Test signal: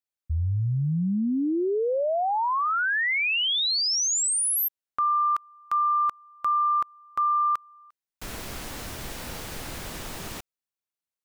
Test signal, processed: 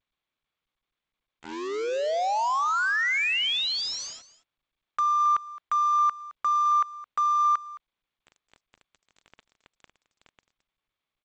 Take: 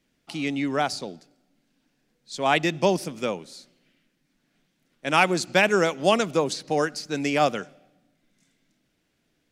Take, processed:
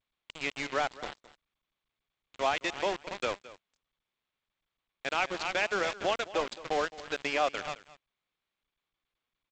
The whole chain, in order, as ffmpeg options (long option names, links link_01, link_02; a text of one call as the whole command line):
ffmpeg -i in.wav -filter_complex "[0:a]asplit=2[link_01][link_02];[link_02]aecho=0:1:273:0.2[link_03];[link_01][link_03]amix=inputs=2:normalize=0,alimiter=limit=-15.5dB:level=0:latency=1:release=235,highpass=500,lowpass=4100,aeval=exprs='val(0)*gte(abs(val(0)),0.0282)':channel_layout=same,asplit=2[link_04][link_05];[link_05]aecho=0:1:216:0.126[link_06];[link_04][link_06]amix=inputs=2:normalize=0" -ar 16000 -c:a g722 out.g722